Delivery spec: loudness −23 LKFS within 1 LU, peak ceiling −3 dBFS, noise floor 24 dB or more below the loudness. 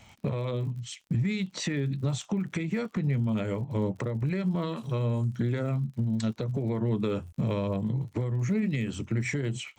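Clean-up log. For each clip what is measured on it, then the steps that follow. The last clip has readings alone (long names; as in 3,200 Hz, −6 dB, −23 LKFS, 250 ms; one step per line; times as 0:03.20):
crackle rate 53 per second; integrated loudness −30.0 LKFS; sample peak −19.5 dBFS; target loudness −23.0 LKFS
→ click removal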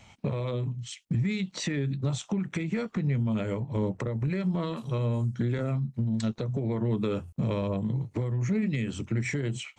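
crackle rate 0 per second; integrated loudness −30.0 LKFS; sample peak −20.0 dBFS; target loudness −23.0 LKFS
→ level +7 dB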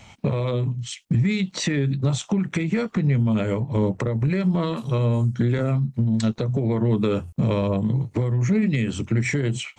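integrated loudness −23.0 LKFS; sample peak −13.0 dBFS; background noise floor −53 dBFS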